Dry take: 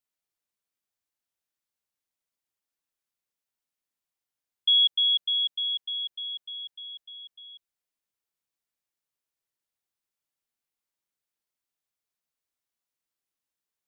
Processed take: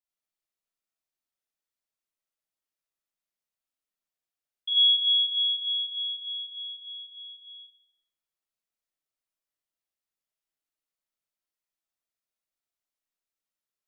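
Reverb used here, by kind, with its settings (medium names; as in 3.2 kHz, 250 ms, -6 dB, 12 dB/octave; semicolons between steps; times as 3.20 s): algorithmic reverb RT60 0.78 s, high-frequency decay 0.85×, pre-delay 15 ms, DRR -6 dB; trim -10 dB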